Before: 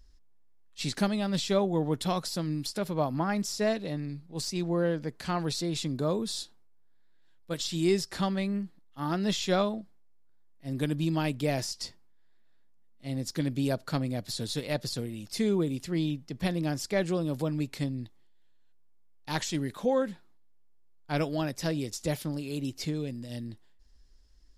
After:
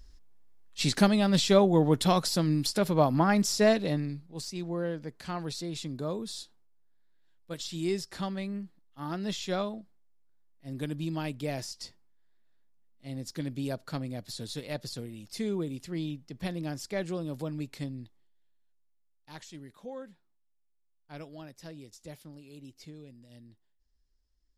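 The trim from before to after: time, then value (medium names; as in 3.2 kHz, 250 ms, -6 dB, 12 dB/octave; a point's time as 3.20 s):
3.92 s +5 dB
4.43 s -5 dB
17.93 s -5 dB
19.32 s -15 dB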